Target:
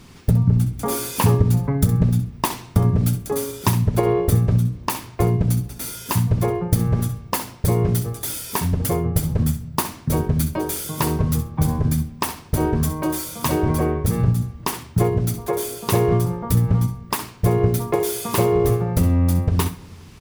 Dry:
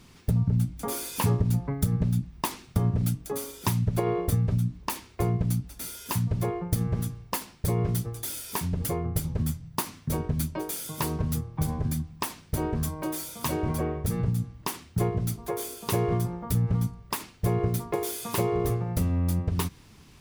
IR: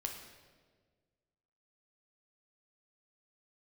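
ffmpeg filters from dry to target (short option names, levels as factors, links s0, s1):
-filter_complex "[0:a]aecho=1:1:65|130:0.266|0.0426,asplit=2[s0][s1];[1:a]atrim=start_sample=2205,lowpass=2300[s2];[s1][s2]afir=irnorm=-1:irlink=0,volume=0.266[s3];[s0][s3]amix=inputs=2:normalize=0,volume=2.11"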